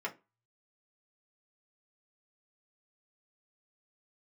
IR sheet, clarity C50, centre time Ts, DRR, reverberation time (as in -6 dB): 18.0 dB, 10 ms, -3.0 dB, 0.25 s